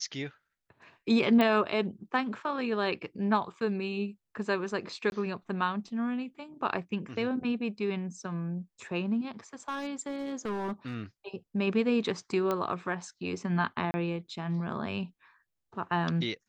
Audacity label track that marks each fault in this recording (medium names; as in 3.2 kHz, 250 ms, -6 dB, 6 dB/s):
1.410000	1.410000	pop -15 dBFS
5.100000	5.120000	dropout 21 ms
9.680000	10.950000	clipped -29.5 dBFS
12.510000	12.510000	pop -17 dBFS
13.910000	13.940000	dropout 30 ms